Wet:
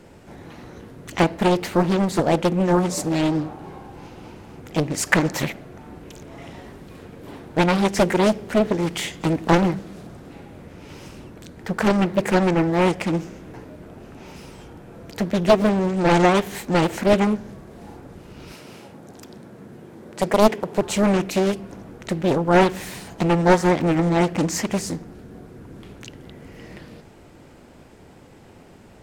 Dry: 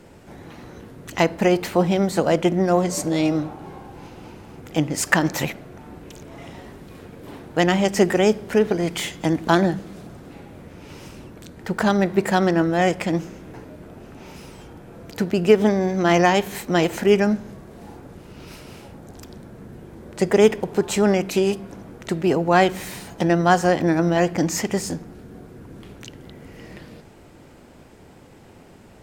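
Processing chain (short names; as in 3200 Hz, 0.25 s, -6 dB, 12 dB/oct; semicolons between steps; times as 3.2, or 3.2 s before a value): 18.53–20.82 HPF 140 Hz 12 dB/oct; Doppler distortion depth 0.97 ms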